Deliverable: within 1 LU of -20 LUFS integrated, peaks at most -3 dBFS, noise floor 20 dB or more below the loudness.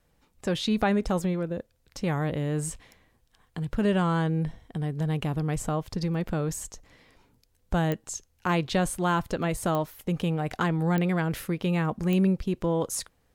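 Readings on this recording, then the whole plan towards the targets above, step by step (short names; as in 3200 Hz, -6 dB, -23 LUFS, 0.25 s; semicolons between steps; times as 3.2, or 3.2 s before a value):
clicks 4; loudness -28.0 LUFS; peak -12.5 dBFS; loudness target -20.0 LUFS
-> de-click; gain +8 dB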